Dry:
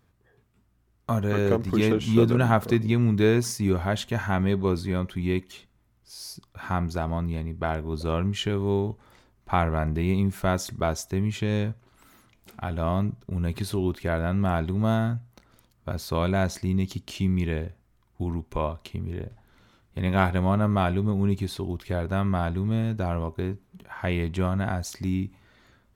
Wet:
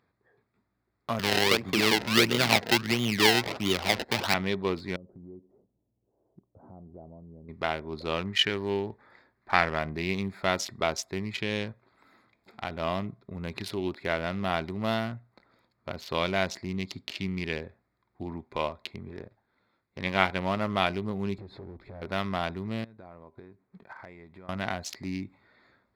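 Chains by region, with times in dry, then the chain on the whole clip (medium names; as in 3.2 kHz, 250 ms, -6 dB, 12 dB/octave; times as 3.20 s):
1.19–4.34 s: decimation with a swept rate 26× 1.5 Hz + three bands compressed up and down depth 40%
4.96–7.49 s: inverse Chebyshev low-pass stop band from 3.6 kHz, stop band 80 dB + compression 10:1, threshold -35 dBFS
8.27–9.79 s: self-modulated delay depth 0.063 ms + peaking EQ 1.7 kHz +8.5 dB 0.39 oct
19.09–20.70 s: companding laws mixed up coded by A + treble shelf 9.6 kHz -7.5 dB
21.38–22.02 s: tilt EQ -3.5 dB/octave + compression 4:1, threshold -29 dBFS + hard clipper -30 dBFS
22.84–24.49 s: median filter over 9 samples + compression 8:1, threshold -40 dBFS + transient shaper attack +5 dB, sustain -5 dB
whole clip: local Wiener filter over 15 samples; high-pass 420 Hz 6 dB/octave; high-order bell 3.2 kHz +9 dB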